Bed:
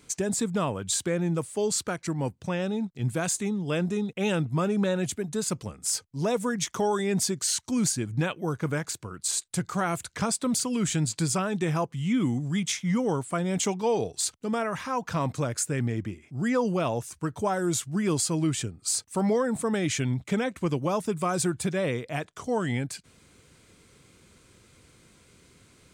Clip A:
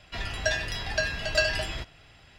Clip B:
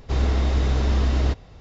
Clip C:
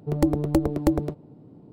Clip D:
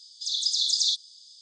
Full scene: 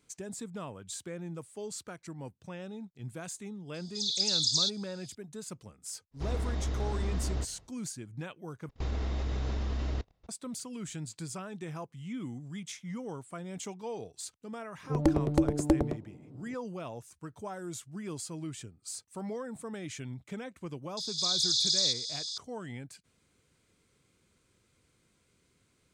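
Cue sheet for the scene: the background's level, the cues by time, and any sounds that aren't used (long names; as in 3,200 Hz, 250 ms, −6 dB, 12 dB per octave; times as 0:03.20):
bed −13.5 dB
0:03.74: mix in D −3.5 dB
0:06.11: mix in B −12 dB, fades 0.10 s + parametric band 2,700 Hz −2 dB
0:08.69: overwrite with B −9.5 dB + output level in coarse steps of 22 dB
0:14.83: mix in C −4 dB + low-pass filter 8,800 Hz
0:20.97: mix in D −6.5 dB + compressor on every frequency bin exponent 0.4
not used: A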